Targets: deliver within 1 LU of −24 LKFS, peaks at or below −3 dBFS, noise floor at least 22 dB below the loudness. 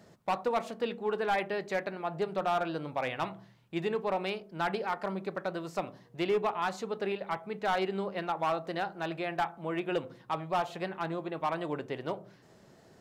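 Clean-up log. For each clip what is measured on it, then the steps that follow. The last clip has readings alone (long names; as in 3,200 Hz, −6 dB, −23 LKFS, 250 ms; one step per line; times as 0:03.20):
share of clipped samples 0.9%; peaks flattened at −23.0 dBFS; integrated loudness −33.5 LKFS; sample peak −23.0 dBFS; target loudness −24.0 LKFS
→ clipped peaks rebuilt −23 dBFS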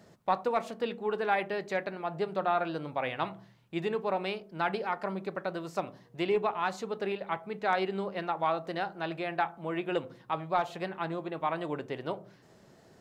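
share of clipped samples 0.0%; integrated loudness −33.0 LKFS; sample peak −14.0 dBFS; target loudness −24.0 LKFS
→ level +9 dB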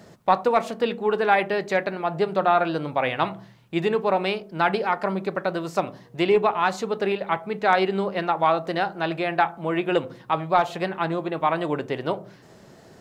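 integrated loudness −24.0 LKFS; sample peak −5.0 dBFS; background noise floor −50 dBFS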